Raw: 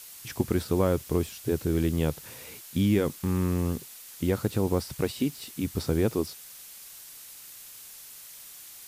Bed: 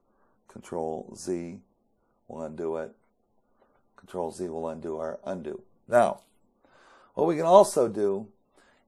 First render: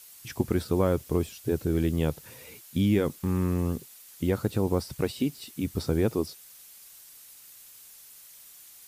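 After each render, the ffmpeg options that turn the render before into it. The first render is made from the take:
-af "afftdn=nr=6:nf=-47"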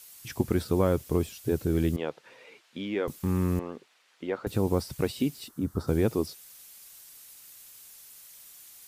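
-filter_complex "[0:a]asettb=1/sr,asplit=3[a][b][c];[a]atrim=end=1.964[d];[b]atrim=start=1.96:end=3.08,asetpts=PTS-STARTPTS,afade=t=in:d=0.004:c=qsin,afade=t=out:st=1.116:d=0.004:c=qsin,highpass=420,lowpass=3.1k[e];[c]atrim=start=3.076[f];[d][e]acrossfade=d=0.004:c1=hsin:c2=qsin[g];[g][f]acrossfade=d=0.004:c1=qsin:c2=hsin,asettb=1/sr,asplit=3[h][i][j];[h]atrim=end=3.594[k];[i]atrim=start=3.59:end=4.47,asetpts=PTS-STARTPTS,afade=t=in:d=0.004:c=qsin,afade=t=out:st=0.876:d=0.004:c=qsin,highpass=420,lowpass=2.7k[l];[j]atrim=start=4.466[m];[k][l]acrossfade=d=0.004:c1=hsin:c2=qsin[n];[n][m]acrossfade=d=0.004:c1=qsin:c2=hsin,asplit=3[o][p][q];[o]afade=t=out:st=5.47:d=0.02[r];[p]highshelf=f=1.8k:t=q:w=3:g=-9.5,afade=t=in:st=5.47:d=0.02,afade=t=out:st=5.87:d=0.02[s];[q]afade=t=in:st=5.87:d=0.02[t];[r][s][t]amix=inputs=3:normalize=0"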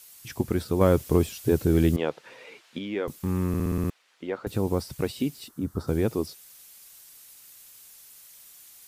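-filter_complex "[0:a]asettb=1/sr,asplit=3[a][b][c];[a]atrim=end=0.814[d];[b]atrim=start=0.81:end=2.79,asetpts=PTS-STARTPTS,afade=t=in:d=0.004:c=qsin,afade=t=out:st=1.976:d=0.004:c=qsin,acontrast=29[e];[c]atrim=start=2.786[f];[d][e]acrossfade=d=0.004:c1=hsin:c2=qsin[g];[g][f]acrossfade=d=0.004:c1=qsin:c2=hsin,asplit=8[h][i][j][k][l][m][n][o];[h]atrim=end=3.542[p];[i]atrim=start=3.478:end=3.542[q];[j]atrim=start=3.478:end=3.542[r];[k]atrim=start=3.478:end=3.542[s];[l]atrim=start=3.478:end=3.542[t];[m]atrim=start=3.478:end=3.542[u];[n]atrim=start=3.478:end=3.542[v];[o]atrim=start=3.898[w];[p][q]acrossfade=d=0.004:c1=hsin:c2=hsin[x];[x][r]acrossfade=d=0.004:c1=hsin:c2=hsin[y];[y][s]acrossfade=d=0.004:c1=hsin:c2=hsin[z];[z][t]acrossfade=d=0.004:c1=hsin:c2=hsin[aa];[aa][u]acrossfade=d=0.004:c1=hsin:c2=hsin[ab];[ab][v]acrossfade=d=0.004:c1=hsin:c2=hsin[ac];[ac][w]acrossfade=d=0.004:c1=hsin:c2=hsin"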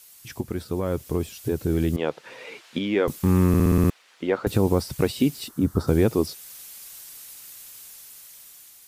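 -af "alimiter=limit=-16.5dB:level=0:latency=1:release=475,dynaudnorm=f=780:g=5:m=8dB"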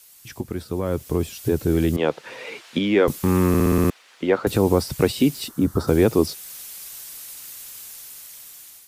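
-filter_complex "[0:a]acrossover=split=250|1100|2100[a][b][c][d];[a]alimiter=limit=-22dB:level=0:latency=1[e];[e][b][c][d]amix=inputs=4:normalize=0,dynaudnorm=f=730:g=3:m=5dB"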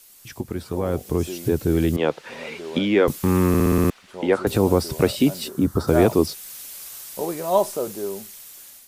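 -filter_complex "[1:a]volume=-3dB[a];[0:a][a]amix=inputs=2:normalize=0"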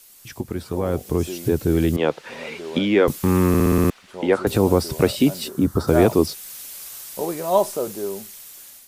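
-af "volume=1dB"

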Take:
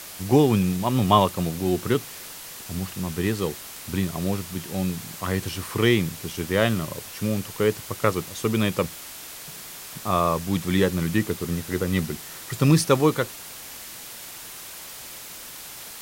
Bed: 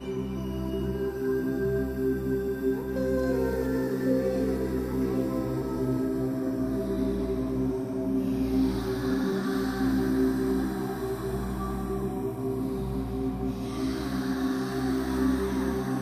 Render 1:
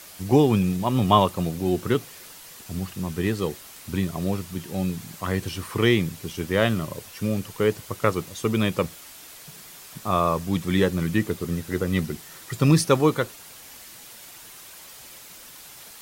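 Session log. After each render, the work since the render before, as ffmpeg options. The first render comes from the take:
-af "afftdn=nr=6:nf=-40"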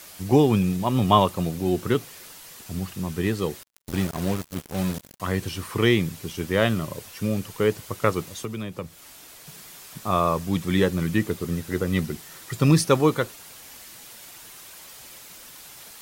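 -filter_complex "[0:a]asettb=1/sr,asplit=3[a][b][c];[a]atrim=end=3.634[d];[b]atrim=start=3.63:end=5.2,asetpts=PTS-STARTPTS,afade=t=in:d=0.004:c=qsin,afade=t=out:st=1.566:d=0.004:c=qsin,acrusher=bits=4:mix=0:aa=0.5[e];[c]atrim=start=5.196[f];[d][e]acrossfade=d=0.004:c1=hsin:c2=qsin[g];[g][f]acrossfade=d=0.004:c1=qsin:c2=hsin,asettb=1/sr,asplit=3[h][i][j];[h]atrim=end=8.424[k];[i]atrim=start=8.42:end=9.47,asetpts=PTS-STARTPTS,afade=t=in:d=0.004:c=qsin,afade=t=out:st=1.046:d=0.004:c=qsin,acrossover=split=170|1100[l][m][n];[l]acompressor=threshold=-37dB:ratio=4[o];[m]acompressor=threshold=-34dB:ratio=4[p];[n]acompressor=threshold=-43dB:ratio=4[q];[o][p][q]amix=inputs=3:normalize=0[r];[j]atrim=start=9.466[s];[k][r]acrossfade=d=0.004:c1=hsin:c2=qsin[t];[t][s]acrossfade=d=0.004:c1=qsin:c2=hsin"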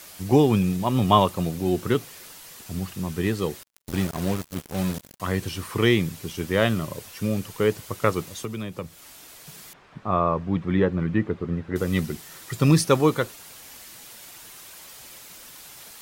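-filter_complex "[0:a]asettb=1/sr,asplit=3[a][b][c];[a]atrim=end=9.734[d];[b]atrim=start=9.73:end=11.76,asetpts=PTS-STARTPTS,afade=t=in:d=0.004:c=qsin,afade=t=out:st=2.026:d=0.004:c=qsin,lowpass=1.8k[e];[c]atrim=start=11.756[f];[d][e]acrossfade=d=0.004:c1=hsin:c2=qsin[g];[g][f]acrossfade=d=0.004:c1=qsin:c2=hsin"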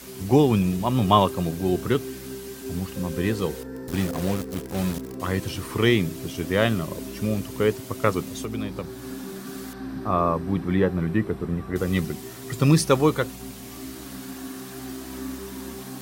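-filter_complex "[1:a]volume=-8.5dB[a];[0:a][a]amix=inputs=2:normalize=0"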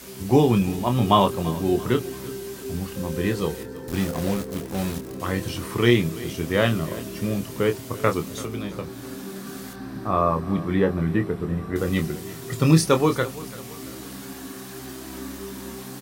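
-filter_complex "[0:a]asplit=2[a][b];[b]adelay=25,volume=-7dB[c];[a][c]amix=inputs=2:normalize=0,aecho=1:1:336|672|1008|1344:0.126|0.0579|0.0266|0.0123"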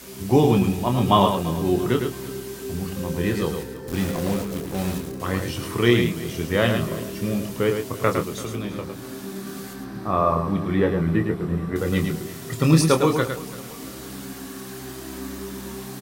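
-af "aecho=1:1:108:0.501"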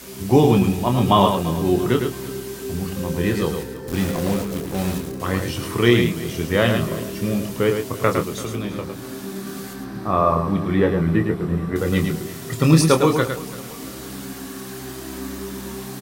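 -af "volume=2.5dB,alimiter=limit=-2dB:level=0:latency=1"

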